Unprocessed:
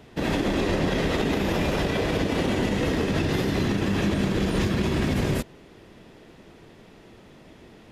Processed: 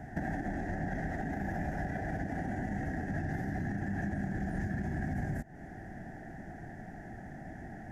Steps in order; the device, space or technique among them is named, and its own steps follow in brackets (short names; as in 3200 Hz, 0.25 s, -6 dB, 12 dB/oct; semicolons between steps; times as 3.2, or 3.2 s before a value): serial compression, leveller first (compressor 1.5:1, threshold -34 dBFS, peak gain reduction 5.5 dB; compressor 6:1, threshold -37 dBFS, peak gain reduction 11.5 dB); EQ curve 160 Hz 0 dB, 300 Hz -4 dB, 490 Hz -16 dB, 760 Hz +7 dB, 1100 Hz -25 dB, 1700 Hz +6 dB, 2500 Hz -22 dB, 3900 Hz -27 dB, 6100 Hz -11 dB, 9300 Hz -13 dB; gain +6.5 dB